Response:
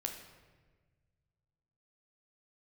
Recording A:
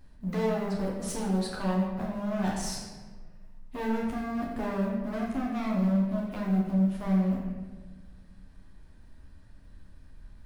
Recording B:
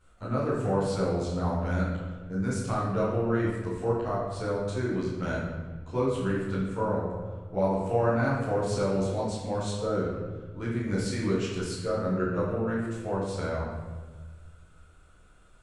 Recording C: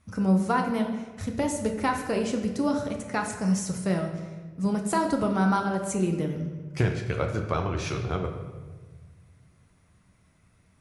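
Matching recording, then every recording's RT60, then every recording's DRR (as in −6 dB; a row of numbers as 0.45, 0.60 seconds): C; 1.4, 1.4, 1.4 seconds; −4.0, −11.0, 3.0 decibels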